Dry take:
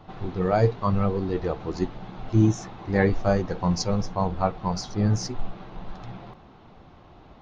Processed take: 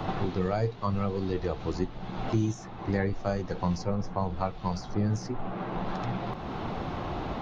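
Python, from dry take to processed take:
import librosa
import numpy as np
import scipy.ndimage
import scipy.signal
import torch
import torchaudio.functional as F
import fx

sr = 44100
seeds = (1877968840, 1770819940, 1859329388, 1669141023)

y = fx.band_squash(x, sr, depth_pct=100)
y = y * 10.0 ** (-5.5 / 20.0)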